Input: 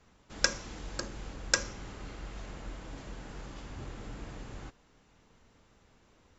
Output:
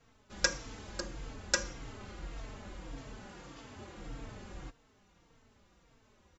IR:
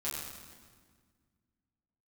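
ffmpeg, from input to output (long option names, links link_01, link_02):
-filter_complex "[0:a]asettb=1/sr,asplit=3[link_01][link_02][link_03];[link_01]atrim=end=3.274[link_04];[link_02]atrim=start=3.27:end=3.97,asetpts=PTS-STARTPTS,afade=type=in:duration=0.004:curve=qsin,afade=type=out:start_time=0.696:duration=0.004:curve=qsin,highpass=frequency=180:poles=1[link_05];[link_03]atrim=start=3.966[link_06];[link_04][link_05]acrossfade=duration=0.004:curve1=hsin:curve2=qsin[link_07];[link_07][link_06]acrossfade=duration=0.004:curve1=qsin:curve2=hsin,asplit=2[link_08][link_09];[link_09]adelay=3.9,afreqshift=-1.7[link_10];[link_08][link_10]amix=inputs=2:normalize=1,volume=1dB"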